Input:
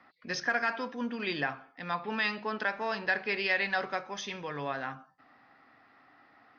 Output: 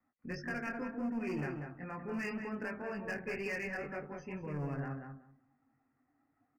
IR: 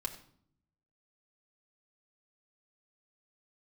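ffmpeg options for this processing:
-filter_complex "[0:a]aemphasis=mode=reproduction:type=riaa,afftdn=nr=18:nf=-45,equalizer=f=200:w=7.4:g=-5,acrossover=split=550|1500[a][b][c];[b]acompressor=threshold=-48dB:ratio=12[d];[a][d][c]amix=inputs=3:normalize=0,flanger=delay=19.5:depth=2.6:speed=2,volume=32.5dB,asoftclip=hard,volume=-32.5dB,asuperstop=centerf=3600:order=8:qfactor=2,asplit=2[e][f];[f]adelay=189,lowpass=f=1.5k:p=1,volume=-4dB,asplit=2[g][h];[h]adelay=189,lowpass=f=1.5k:p=1,volume=0.19,asplit=2[i][j];[j]adelay=189,lowpass=f=1.5k:p=1,volume=0.19[k];[e][g][i][k]amix=inputs=4:normalize=0,volume=-2dB"

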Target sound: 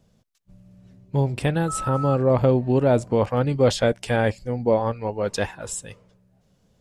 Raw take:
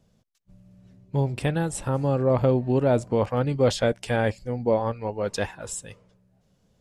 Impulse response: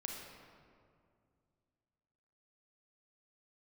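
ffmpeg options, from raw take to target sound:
-filter_complex "[0:a]asettb=1/sr,asplit=3[a][b][c];[a]atrim=end=1.684[d];[b]atrim=start=1.68:end=2.15,asetpts=PTS-STARTPTS,afade=t=in:d=0.004:c=qsin,afade=t=out:st=0.466:d=0.004:c=qsin,aeval=exprs='val(0)+0.0316*sin(2*PI*1300*n/s)':c=same[e];[c]atrim=start=2.146[f];[d][e]acrossfade=d=0.004:c1=hsin:c2=qsin[g];[g][f]acrossfade=d=0.004:c1=qsin:c2=hsin,volume=2.5dB"

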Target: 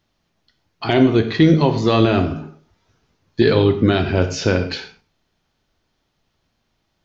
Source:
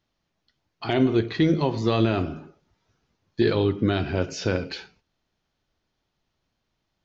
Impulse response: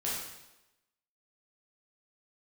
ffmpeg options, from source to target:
-filter_complex "[0:a]asplit=2[a][b];[1:a]atrim=start_sample=2205,atrim=end_sample=6174[c];[b][c]afir=irnorm=-1:irlink=0,volume=-11.5dB[d];[a][d]amix=inputs=2:normalize=0,volume=5.5dB"

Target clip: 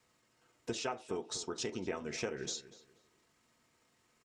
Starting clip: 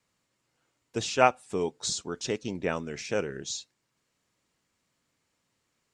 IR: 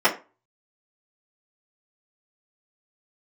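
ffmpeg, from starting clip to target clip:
-filter_complex "[0:a]acompressor=threshold=-41dB:ratio=5,atempo=1.4,asplit=2[a][b];[b]adelay=242,lowpass=f=3k:p=1,volume=-15dB,asplit=2[c][d];[d]adelay=242,lowpass=f=3k:p=1,volume=0.3,asplit=2[e][f];[f]adelay=242,lowpass=f=3k:p=1,volume=0.3[g];[a][c][e][g]amix=inputs=4:normalize=0,asplit=2[h][i];[1:a]atrim=start_sample=2205[j];[i][j]afir=irnorm=-1:irlink=0,volume=-22dB[k];[h][k]amix=inputs=2:normalize=0,volume=3dB"

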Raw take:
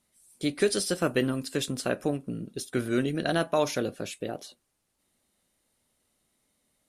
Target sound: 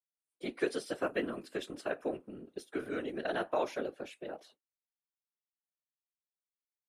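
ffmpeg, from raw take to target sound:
-filter_complex "[0:a]agate=range=-33dB:threshold=-46dB:ratio=3:detection=peak,afftfilt=real='hypot(re,im)*cos(2*PI*random(0))':imag='hypot(re,im)*sin(2*PI*random(1))':win_size=512:overlap=0.75,acrossover=split=260 3000:gain=0.141 1 0.224[a][b][c];[a][b][c]amix=inputs=3:normalize=0"

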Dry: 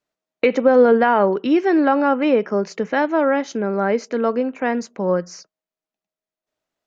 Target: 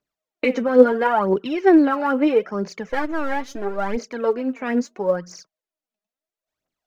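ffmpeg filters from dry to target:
-filter_complex "[0:a]asettb=1/sr,asplit=3[a][b][c];[a]atrim=end=2.894[d];[b]atrim=start=2.89:end=3.97,asetpts=PTS-STARTPTS,afade=t=in:d=0.004:c=qsin,afade=t=out:st=1.076:d=0.004:c=qsin,aeval=exprs='if(lt(val(0),0),0.447*val(0),val(0))':c=same[e];[c]atrim=start=3.966[f];[d][e]acrossfade=d=0.004:c1=hsin:c2=qsin[g];[g][f]acrossfade=d=0.004:c1=qsin:c2=hsin,aphaser=in_gain=1:out_gain=1:delay=5:decay=0.68:speed=0.75:type=triangular,volume=-5dB"

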